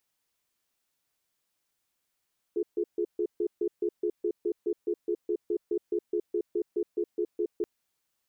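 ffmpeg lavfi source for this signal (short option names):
-f lavfi -i "aevalsrc='0.0398*(sin(2*PI*350*t)+sin(2*PI*421*t))*clip(min(mod(t,0.21),0.07-mod(t,0.21))/0.005,0,1)':d=5.08:s=44100"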